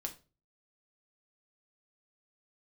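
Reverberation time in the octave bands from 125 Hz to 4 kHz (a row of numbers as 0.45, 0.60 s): 0.55, 0.40, 0.40, 0.30, 0.25, 0.25 s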